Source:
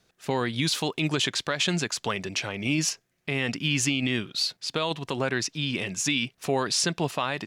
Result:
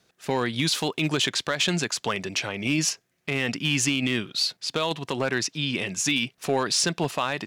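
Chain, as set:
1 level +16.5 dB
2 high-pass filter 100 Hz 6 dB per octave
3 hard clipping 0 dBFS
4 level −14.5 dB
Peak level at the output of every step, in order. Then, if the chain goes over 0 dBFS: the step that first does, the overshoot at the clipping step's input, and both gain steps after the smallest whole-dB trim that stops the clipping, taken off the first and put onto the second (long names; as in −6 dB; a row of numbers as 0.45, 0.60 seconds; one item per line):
+2.5, +4.0, 0.0, −14.5 dBFS
step 1, 4.0 dB
step 1 +12.5 dB, step 4 −10.5 dB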